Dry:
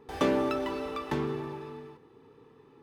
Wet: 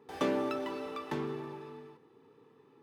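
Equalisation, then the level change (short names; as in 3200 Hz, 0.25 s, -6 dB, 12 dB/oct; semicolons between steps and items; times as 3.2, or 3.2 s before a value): HPF 130 Hz 12 dB/oct; -4.5 dB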